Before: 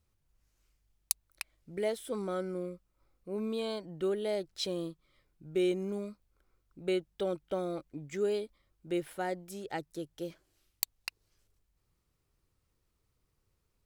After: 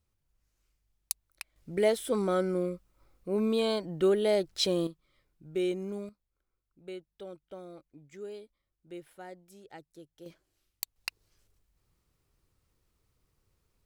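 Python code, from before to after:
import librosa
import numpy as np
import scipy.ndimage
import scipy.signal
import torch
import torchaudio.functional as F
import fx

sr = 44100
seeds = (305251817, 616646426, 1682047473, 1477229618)

y = fx.gain(x, sr, db=fx.steps((0.0, -2.5), (1.56, 7.0), (4.87, -1.0), (6.09, -11.0), (10.26, -4.0), (10.96, 3.0)))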